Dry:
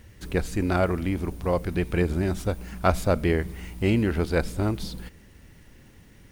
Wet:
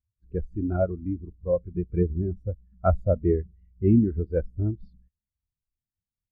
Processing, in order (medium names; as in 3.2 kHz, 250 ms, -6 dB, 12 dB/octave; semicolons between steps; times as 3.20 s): spectral contrast expander 2.5:1; trim -2.5 dB